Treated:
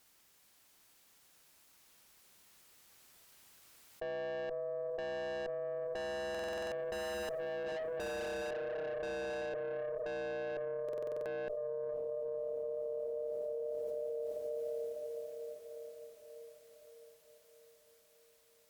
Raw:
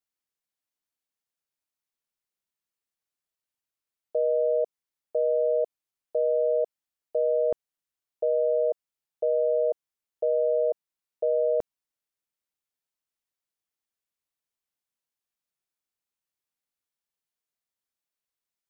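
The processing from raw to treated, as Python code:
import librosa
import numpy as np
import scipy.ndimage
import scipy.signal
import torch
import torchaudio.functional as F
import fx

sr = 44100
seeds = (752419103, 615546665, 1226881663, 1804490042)

p1 = fx.doppler_pass(x, sr, speed_mps=11, closest_m=3.0, pass_at_s=7.46)
p2 = p1 + fx.echo_diffused(p1, sr, ms=460, feedback_pct=57, wet_db=-15.0, dry=0)
p3 = fx.tube_stage(p2, sr, drive_db=51.0, bias=0.25)
p4 = fx.buffer_glitch(p3, sr, at_s=(6.3, 10.84), block=2048, repeats=8)
p5 = fx.env_flatten(p4, sr, amount_pct=100)
y = p5 * 10.0 ** (12.5 / 20.0)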